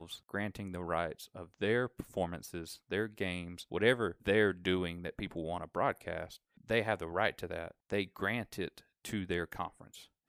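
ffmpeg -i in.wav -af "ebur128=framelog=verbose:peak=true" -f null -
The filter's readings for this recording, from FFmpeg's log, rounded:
Integrated loudness:
  I:         -35.9 LUFS
  Threshold: -46.2 LUFS
Loudness range:
  LRA:         3.7 LU
  Threshold: -55.6 LUFS
  LRA low:   -37.8 LUFS
  LRA high:  -34.1 LUFS
True peak:
  Peak:      -12.9 dBFS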